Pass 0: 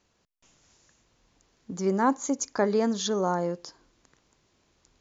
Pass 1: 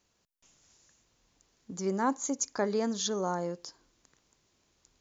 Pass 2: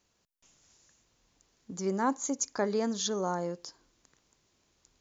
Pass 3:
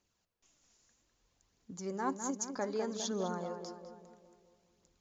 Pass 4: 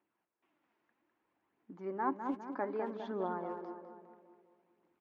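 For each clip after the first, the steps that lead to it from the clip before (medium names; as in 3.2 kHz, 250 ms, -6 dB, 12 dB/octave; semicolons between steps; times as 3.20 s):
treble shelf 5 kHz +8.5 dB; trim -5.5 dB
no audible change
filtered feedback delay 203 ms, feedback 54%, low-pass 2.1 kHz, level -6.5 dB; phaser 0.62 Hz, delay 4.8 ms, feedback 34%; trim -7 dB
cabinet simulation 260–2300 Hz, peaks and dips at 320 Hz +8 dB, 490 Hz -5 dB, 910 Hz +4 dB; speakerphone echo 260 ms, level -17 dB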